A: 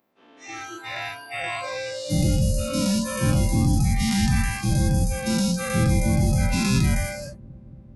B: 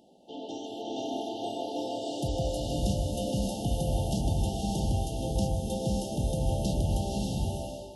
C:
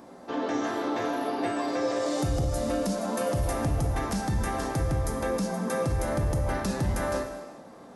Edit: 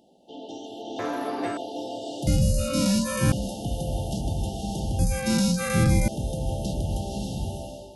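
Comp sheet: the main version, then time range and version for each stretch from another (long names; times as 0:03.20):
B
0:00.99–0:01.57: punch in from C
0:02.27–0:03.32: punch in from A
0:04.99–0:06.08: punch in from A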